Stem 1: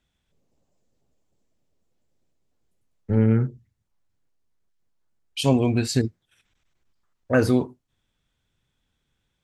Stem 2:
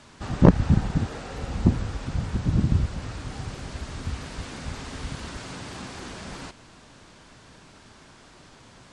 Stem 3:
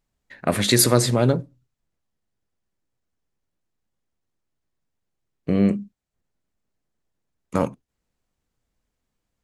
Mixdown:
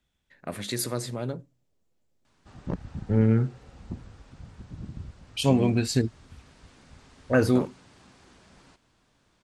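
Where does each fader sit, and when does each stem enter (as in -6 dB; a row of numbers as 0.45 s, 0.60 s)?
-2.0 dB, -17.5 dB, -13.5 dB; 0.00 s, 2.25 s, 0.00 s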